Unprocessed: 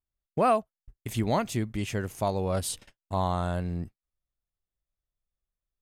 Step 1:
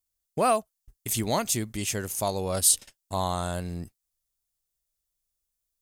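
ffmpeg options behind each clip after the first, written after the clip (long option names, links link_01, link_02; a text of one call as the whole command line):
ffmpeg -i in.wav -af "bass=frequency=250:gain=-3,treble=frequency=4000:gain=15" out.wav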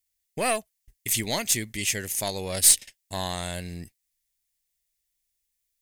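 ffmpeg -i in.wav -af "aeval=exprs='0.473*(cos(1*acos(clip(val(0)/0.473,-1,1)))-cos(1*PI/2))+0.0841*(cos(2*acos(clip(val(0)/0.473,-1,1)))-cos(2*PI/2))+0.0335*(cos(4*acos(clip(val(0)/0.473,-1,1)))-cos(4*PI/2))+0.0299*(cos(6*acos(clip(val(0)/0.473,-1,1)))-cos(6*PI/2))':channel_layout=same,highshelf=frequency=1600:width_type=q:width=3:gain=6,volume=-2.5dB" out.wav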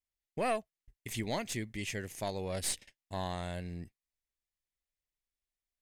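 ffmpeg -i in.wav -af "lowpass=frequency=1500:poles=1,volume=-4.5dB" out.wav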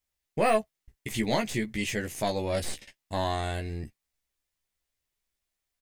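ffmpeg -i in.wav -filter_complex "[0:a]deesser=0.95,asplit=2[link_01][link_02];[link_02]adelay=14,volume=-4dB[link_03];[link_01][link_03]amix=inputs=2:normalize=0,volume=7dB" out.wav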